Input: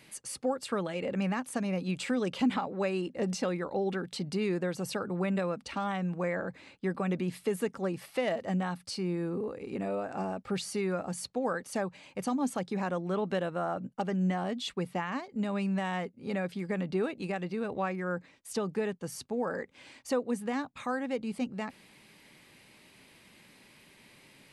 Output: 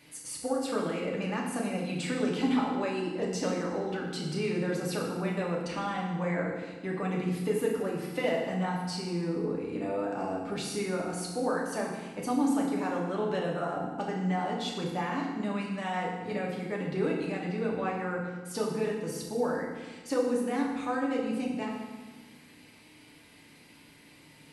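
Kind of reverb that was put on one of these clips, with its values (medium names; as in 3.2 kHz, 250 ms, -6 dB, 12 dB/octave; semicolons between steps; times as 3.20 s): FDN reverb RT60 1.3 s, low-frequency decay 1.45×, high-frequency decay 0.85×, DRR -3 dB; trim -3 dB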